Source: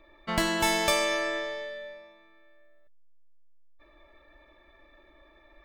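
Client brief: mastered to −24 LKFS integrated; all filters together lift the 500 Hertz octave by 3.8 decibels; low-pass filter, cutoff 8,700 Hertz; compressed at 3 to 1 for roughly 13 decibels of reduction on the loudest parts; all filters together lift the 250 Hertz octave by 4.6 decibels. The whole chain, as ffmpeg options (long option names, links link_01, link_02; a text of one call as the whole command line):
ffmpeg -i in.wav -af "lowpass=8700,equalizer=frequency=250:width_type=o:gain=5,equalizer=frequency=500:width_type=o:gain=4,acompressor=threshold=-37dB:ratio=3,volume=13dB" out.wav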